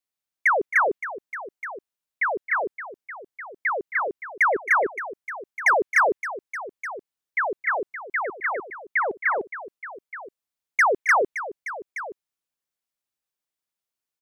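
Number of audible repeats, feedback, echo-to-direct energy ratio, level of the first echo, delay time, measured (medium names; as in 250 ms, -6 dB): 2, no regular repeats, -10.5 dB, -12.5 dB, 269 ms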